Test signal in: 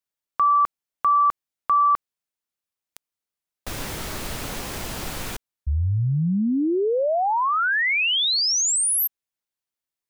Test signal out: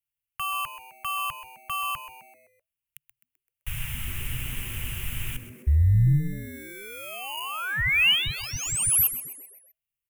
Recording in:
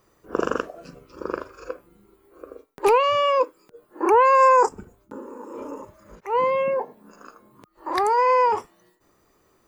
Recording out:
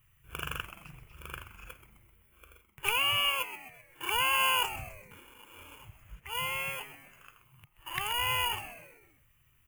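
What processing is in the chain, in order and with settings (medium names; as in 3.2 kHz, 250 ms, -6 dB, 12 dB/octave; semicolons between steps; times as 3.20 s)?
in parallel at -8 dB: sample-and-hold 23×; on the sum: FFT filter 140 Hz 0 dB, 220 Hz -29 dB, 540 Hz -27 dB, 2.9 kHz +3 dB, 4.3 kHz -22 dB, 11 kHz +1 dB; frequency-shifting echo 129 ms, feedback 49%, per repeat -130 Hz, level -12.5 dB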